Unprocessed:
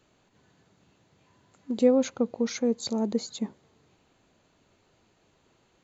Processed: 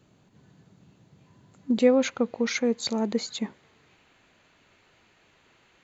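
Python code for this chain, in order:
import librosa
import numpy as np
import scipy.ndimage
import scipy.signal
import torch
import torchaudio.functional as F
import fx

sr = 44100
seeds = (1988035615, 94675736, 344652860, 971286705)

y = fx.peak_eq(x, sr, hz=fx.steps((0.0, 150.0), (1.78, 2100.0)), db=11.0, octaves=1.8)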